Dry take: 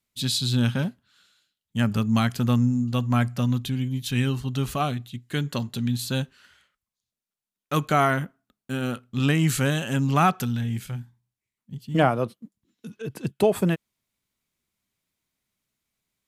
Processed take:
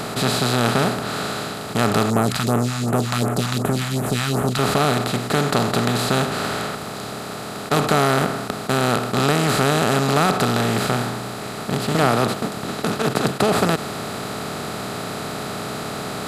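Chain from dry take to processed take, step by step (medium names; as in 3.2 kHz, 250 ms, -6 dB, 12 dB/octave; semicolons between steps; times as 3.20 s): spectral levelling over time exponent 0.2; 2.10–4.59 s: phase shifter stages 2, 2.7 Hz, lowest notch 370–4400 Hz; trim -4 dB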